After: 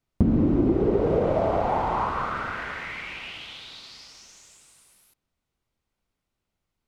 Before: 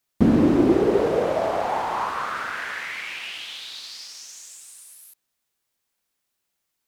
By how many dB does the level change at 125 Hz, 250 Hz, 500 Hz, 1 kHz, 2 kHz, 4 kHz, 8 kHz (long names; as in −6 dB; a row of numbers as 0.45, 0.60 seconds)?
+2.5, −3.5, −2.5, −1.0, −4.0, −6.0, −11.0 decibels